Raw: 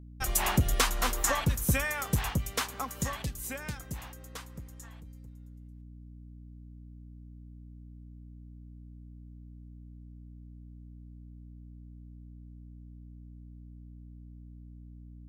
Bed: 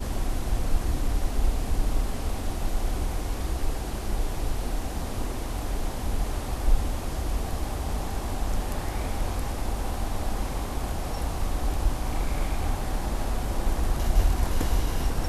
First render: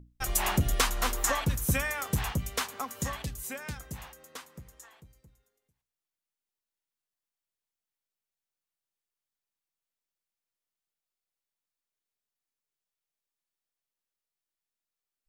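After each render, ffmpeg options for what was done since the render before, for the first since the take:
-af "bandreject=f=60:t=h:w=6,bandreject=f=120:t=h:w=6,bandreject=f=180:t=h:w=6,bandreject=f=240:t=h:w=6,bandreject=f=300:t=h:w=6"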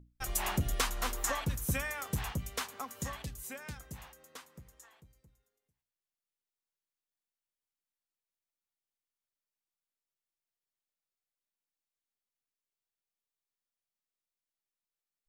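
-af "volume=-5.5dB"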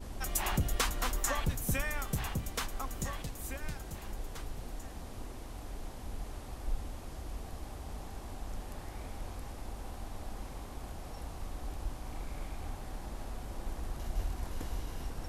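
-filter_complex "[1:a]volume=-13.5dB[a];[0:a][a]amix=inputs=2:normalize=0"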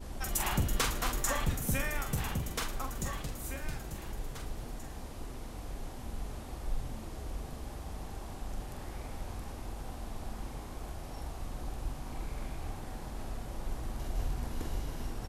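-filter_complex "[0:a]asplit=2[a][b];[b]adelay=45,volume=-6.5dB[c];[a][c]amix=inputs=2:normalize=0,asplit=7[d][e][f][g][h][i][j];[e]adelay=114,afreqshift=99,volume=-16.5dB[k];[f]adelay=228,afreqshift=198,volume=-20.5dB[l];[g]adelay=342,afreqshift=297,volume=-24.5dB[m];[h]adelay=456,afreqshift=396,volume=-28.5dB[n];[i]adelay=570,afreqshift=495,volume=-32.6dB[o];[j]adelay=684,afreqshift=594,volume=-36.6dB[p];[d][k][l][m][n][o][p]amix=inputs=7:normalize=0"

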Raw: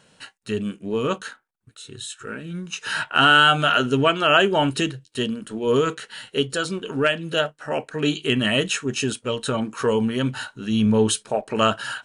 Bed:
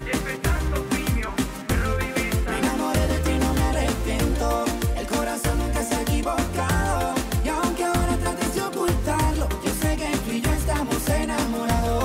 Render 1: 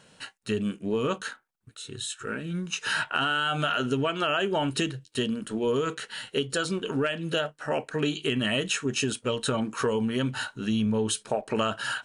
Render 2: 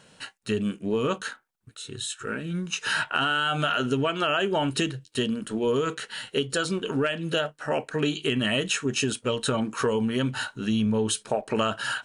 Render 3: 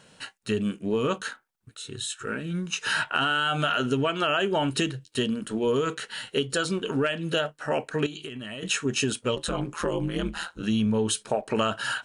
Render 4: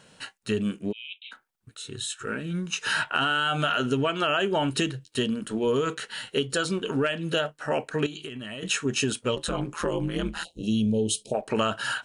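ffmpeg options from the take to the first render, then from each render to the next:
-af "alimiter=limit=-9.5dB:level=0:latency=1,acompressor=threshold=-23dB:ratio=6"
-af "volume=1.5dB"
-filter_complex "[0:a]asettb=1/sr,asplit=3[a][b][c];[a]atrim=end=8.064[d];[b]atrim=start=8.06:end=8.63,asetpts=PTS-STARTPTS,afade=t=in:d=0.004:c=qsin,afade=t=out:st=0.566:d=0.004:c=qsin,acompressor=threshold=-33dB:ratio=10:attack=3.2:release=140:knee=1:detection=peak[e];[c]atrim=start=8.626[f];[d][e]acrossfade=d=0.004:c1=hsin:c2=qsin[g];[g][f]acrossfade=d=0.004:c1=qsin:c2=hsin,asplit=3[h][i][j];[h]afade=t=out:st=9.35:d=0.02[k];[i]aeval=exprs='val(0)*sin(2*PI*81*n/s)':c=same,afade=t=in:st=9.35:d=0.02,afade=t=out:st=10.62:d=0.02[l];[j]afade=t=in:st=10.62:d=0.02[m];[k][l][m]amix=inputs=3:normalize=0"
-filter_complex "[0:a]asplit=3[a][b][c];[a]afade=t=out:st=0.91:d=0.02[d];[b]asuperpass=centerf=2900:order=20:qfactor=1.7,afade=t=in:st=0.91:d=0.02,afade=t=out:st=1.31:d=0.02[e];[c]afade=t=in:st=1.31:d=0.02[f];[d][e][f]amix=inputs=3:normalize=0,asplit=3[g][h][i];[g]afade=t=out:st=10.43:d=0.02[j];[h]asuperstop=centerf=1400:order=8:qfactor=0.65,afade=t=in:st=10.43:d=0.02,afade=t=out:st=11.33:d=0.02[k];[i]afade=t=in:st=11.33:d=0.02[l];[j][k][l]amix=inputs=3:normalize=0"

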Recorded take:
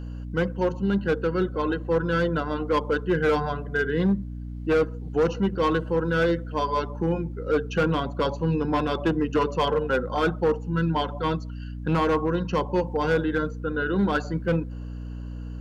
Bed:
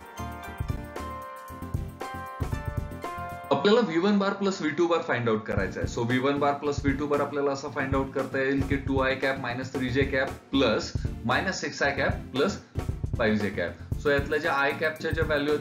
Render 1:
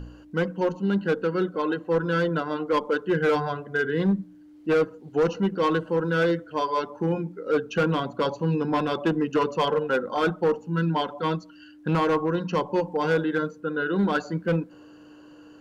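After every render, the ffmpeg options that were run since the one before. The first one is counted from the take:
-af "bandreject=f=60:t=h:w=4,bandreject=f=120:t=h:w=4,bandreject=f=180:t=h:w=4,bandreject=f=240:t=h:w=4"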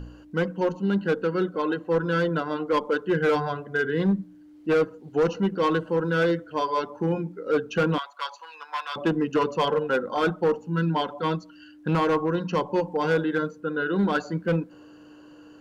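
-filter_complex "[0:a]asettb=1/sr,asplit=3[a][b][c];[a]atrim=end=7.984[d];[b]atrim=start=7.98:end=8.96,asetpts=PTS-STARTPTS,afade=t=in:d=0.004:c=qsin,afade=t=out:st=0.976:d=0.004:c=qsin,highpass=f=980:w=0.5412,highpass=f=980:w=1.3066[e];[c]atrim=start=8.956[f];[d][e]acrossfade=d=0.004:c1=hsin:c2=qsin[g];[g][f]acrossfade=d=0.004:c1=qsin:c2=hsin"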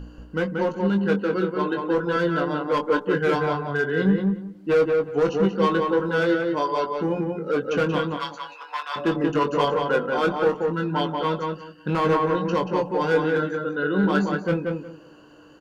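-filter_complex "[0:a]asplit=2[a][b];[b]adelay=21,volume=-6.5dB[c];[a][c]amix=inputs=2:normalize=0,asplit=2[d][e];[e]adelay=182,lowpass=f=2.4k:p=1,volume=-3dB,asplit=2[f][g];[g]adelay=182,lowpass=f=2.4k:p=1,volume=0.21,asplit=2[h][i];[i]adelay=182,lowpass=f=2.4k:p=1,volume=0.21[j];[d][f][h][j]amix=inputs=4:normalize=0"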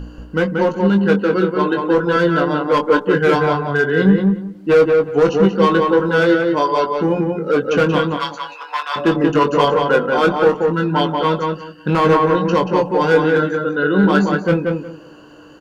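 -af "volume=7.5dB,alimiter=limit=-3dB:level=0:latency=1"

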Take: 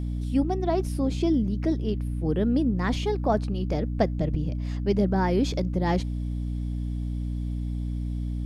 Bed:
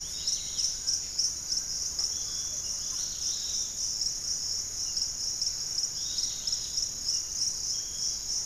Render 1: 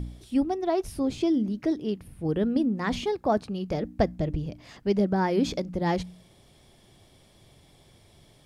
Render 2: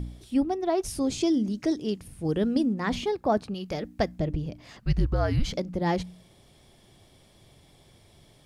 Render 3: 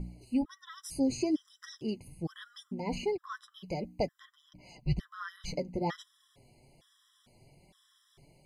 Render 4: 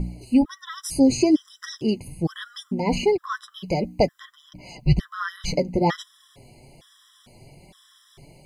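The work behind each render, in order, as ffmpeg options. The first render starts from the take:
-af "bandreject=f=60:t=h:w=4,bandreject=f=120:t=h:w=4,bandreject=f=180:t=h:w=4,bandreject=f=240:t=h:w=4,bandreject=f=300:t=h:w=4"
-filter_complex "[0:a]asettb=1/sr,asplit=3[a][b][c];[a]atrim=end=0.834[d];[b]atrim=start=0.83:end=2.74,asetpts=PTS-STARTPTS,afade=t=in:d=0.004:c=qsin,afade=t=out:st=1.906:d=0.004:c=qsin,equalizer=f=7k:w=0.81:g=11.5[e];[c]atrim=start=2.736[f];[d][e]acrossfade=d=0.004:c1=hsin:c2=qsin[g];[g][f]acrossfade=d=0.004:c1=qsin:c2=hsin,asettb=1/sr,asplit=3[h][i][j];[h]atrim=end=3.544[k];[i]atrim=start=3.54:end=4.19,asetpts=PTS-STARTPTS,afade=t=in:d=0.004:c=qsin,afade=t=out:st=0.646:d=0.004:c=qsin,tiltshelf=f=1.1k:g=-4.5[l];[j]atrim=start=4.186[m];[k][l]acrossfade=d=0.004:c1=hsin:c2=qsin[n];[n][m]acrossfade=d=0.004:c1=qsin:c2=hsin,asettb=1/sr,asplit=3[o][p][q];[o]atrim=end=4.794[r];[p]atrim=start=4.79:end=5.53,asetpts=PTS-STARTPTS,afade=t=in:d=0.004:c=qsin,afade=t=out:st=0.736:d=0.004:c=qsin,afreqshift=-250[s];[q]atrim=start=5.526[t];[r][s]acrossfade=d=0.004:c1=hsin:c2=qsin[u];[u][t]acrossfade=d=0.004:c1=qsin:c2=hsin"
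-af "flanger=delay=5.2:depth=3.2:regen=30:speed=1.3:shape=sinusoidal,afftfilt=real='re*gt(sin(2*PI*1.1*pts/sr)*(1-2*mod(floor(b*sr/1024/1000),2)),0)':imag='im*gt(sin(2*PI*1.1*pts/sr)*(1-2*mod(floor(b*sr/1024/1000),2)),0)':win_size=1024:overlap=0.75"
-af "volume=12dB"

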